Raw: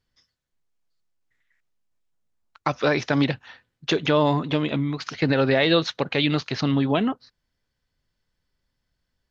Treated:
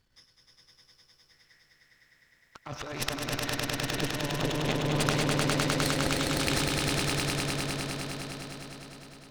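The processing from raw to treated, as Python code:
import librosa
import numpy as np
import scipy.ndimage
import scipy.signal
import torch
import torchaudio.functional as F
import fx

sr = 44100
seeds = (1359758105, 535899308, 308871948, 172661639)

y = np.where(x < 0.0, 10.0 ** (-7.0 / 20.0) * x, x)
y = fx.over_compress(y, sr, threshold_db=-35.0, ratio=-1.0)
y = fx.cheby_harmonics(y, sr, harmonics=(8,), levels_db=(-12,), full_scale_db=-8.0)
y = fx.echo_swell(y, sr, ms=102, loudest=5, wet_db=-3)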